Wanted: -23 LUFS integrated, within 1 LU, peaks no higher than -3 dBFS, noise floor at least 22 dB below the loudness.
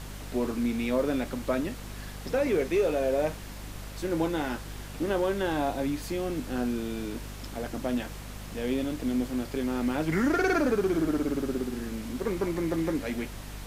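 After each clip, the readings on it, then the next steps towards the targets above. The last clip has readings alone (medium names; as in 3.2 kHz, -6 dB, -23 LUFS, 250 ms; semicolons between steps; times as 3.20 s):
hum 50 Hz; highest harmonic 250 Hz; hum level -38 dBFS; noise floor -41 dBFS; noise floor target -52 dBFS; loudness -29.5 LUFS; peak level -16.0 dBFS; loudness target -23.0 LUFS
-> de-hum 50 Hz, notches 5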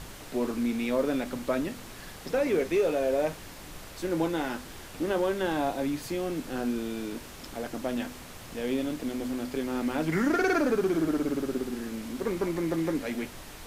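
hum not found; noise floor -45 dBFS; noise floor target -52 dBFS
-> noise print and reduce 7 dB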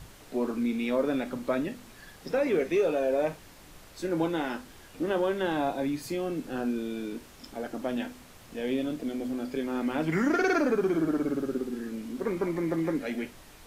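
noise floor -52 dBFS; loudness -30.0 LUFS; peak level -16.0 dBFS; loudness target -23.0 LUFS
-> trim +7 dB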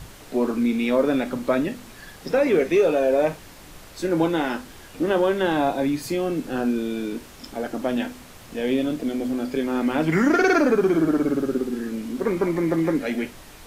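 loudness -23.0 LUFS; peak level -9.0 dBFS; noise floor -45 dBFS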